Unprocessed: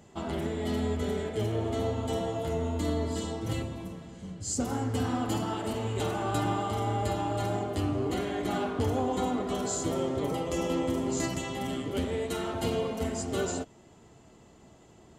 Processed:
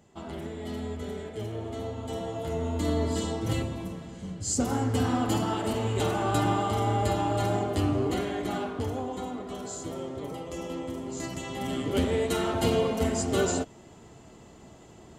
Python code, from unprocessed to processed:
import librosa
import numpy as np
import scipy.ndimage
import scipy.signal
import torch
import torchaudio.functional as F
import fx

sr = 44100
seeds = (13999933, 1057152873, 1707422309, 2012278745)

y = fx.gain(x, sr, db=fx.line((1.92, -5.0), (3.05, 3.5), (7.95, 3.5), (9.25, -6.0), (11.13, -6.0), (11.95, 5.0)))